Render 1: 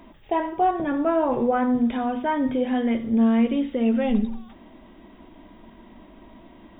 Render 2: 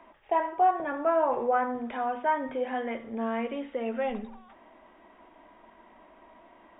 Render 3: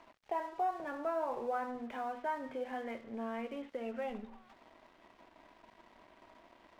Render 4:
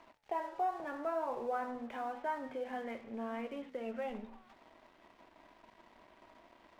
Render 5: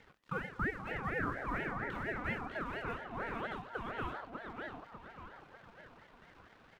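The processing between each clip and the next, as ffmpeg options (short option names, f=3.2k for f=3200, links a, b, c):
-filter_complex "[0:a]acrossover=split=480 2600:gain=0.126 1 0.0794[a][b][c];[a][b][c]amix=inputs=3:normalize=0"
-af "acompressor=threshold=-51dB:ratio=1.5,aeval=exprs='sgn(val(0))*max(abs(val(0))-0.00119,0)':c=same"
-af "flanger=delay=9.2:depth=8.2:regen=-88:speed=0.88:shape=triangular,volume=4dB"
-filter_complex "[0:a]asplit=2[a][b];[b]adelay=596,lowpass=f=3.9k:p=1,volume=-4dB,asplit=2[c][d];[d]adelay=596,lowpass=f=3.9k:p=1,volume=0.48,asplit=2[e][f];[f]adelay=596,lowpass=f=3.9k:p=1,volume=0.48,asplit=2[g][h];[h]adelay=596,lowpass=f=3.9k:p=1,volume=0.48,asplit=2[i][j];[j]adelay=596,lowpass=f=3.9k:p=1,volume=0.48,asplit=2[k][l];[l]adelay=596,lowpass=f=3.9k:p=1,volume=0.48[m];[a][c][e][g][i][k][m]amix=inputs=7:normalize=0,aeval=exprs='val(0)*sin(2*PI*810*n/s+810*0.45/4.3*sin(2*PI*4.3*n/s))':c=same,volume=1.5dB"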